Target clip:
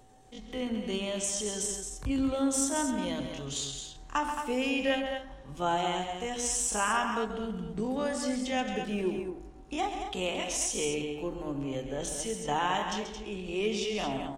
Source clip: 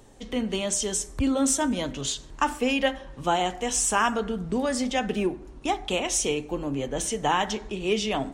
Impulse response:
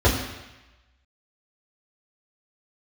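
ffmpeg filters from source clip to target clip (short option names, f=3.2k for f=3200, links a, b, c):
-filter_complex "[0:a]aeval=exprs='val(0)+0.00178*sin(2*PI*760*n/s)':c=same,bandreject=f=80:t=h:w=4,bandreject=f=160:t=h:w=4,bandreject=f=240:t=h:w=4,bandreject=f=320:t=h:w=4,bandreject=f=400:t=h:w=4,bandreject=f=480:t=h:w=4,bandreject=f=560:t=h:w=4,bandreject=f=640:t=h:w=4,bandreject=f=720:t=h:w=4,bandreject=f=800:t=h:w=4,bandreject=f=880:t=h:w=4,bandreject=f=960:t=h:w=4,bandreject=f=1.04k:t=h:w=4,bandreject=f=1.12k:t=h:w=4,bandreject=f=1.2k:t=h:w=4,bandreject=f=1.28k:t=h:w=4,atempo=0.58,asplit=2[a][b];[b]aecho=0:1:134.1|221.6:0.355|0.398[c];[a][c]amix=inputs=2:normalize=0,volume=-6dB"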